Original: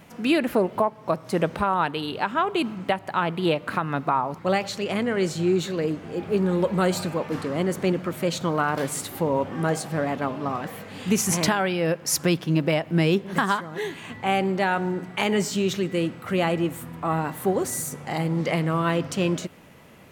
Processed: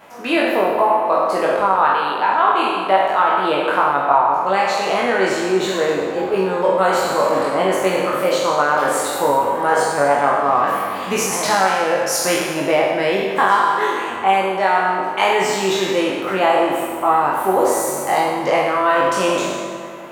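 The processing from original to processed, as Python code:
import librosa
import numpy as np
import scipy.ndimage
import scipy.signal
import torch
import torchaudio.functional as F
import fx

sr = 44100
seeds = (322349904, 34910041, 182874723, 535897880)

y = fx.spec_trails(x, sr, decay_s=1.34)
y = fx.peak_eq(y, sr, hz=880.0, db=8.5, octaves=1.6)
y = fx.rider(y, sr, range_db=4, speed_s=0.5)
y = fx.bass_treble(y, sr, bass_db=-13, treble_db=-2)
y = fx.doubler(y, sr, ms=21.0, db=-3.0)
y = fx.echo_wet_lowpass(y, sr, ms=97, feedback_pct=80, hz=2200.0, wet_db=-12)
y = y * 10.0 ** (-1.0 / 20.0)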